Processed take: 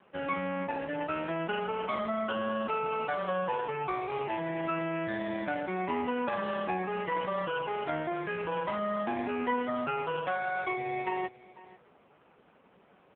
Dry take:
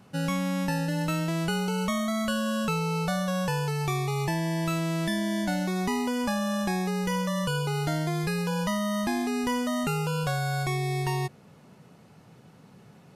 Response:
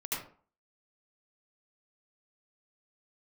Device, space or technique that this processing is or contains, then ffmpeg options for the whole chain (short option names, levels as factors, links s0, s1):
satellite phone: -af "highpass=380,lowpass=3000,aecho=1:1:493:0.1,volume=1.26" -ar 8000 -c:a libopencore_amrnb -b:a 4750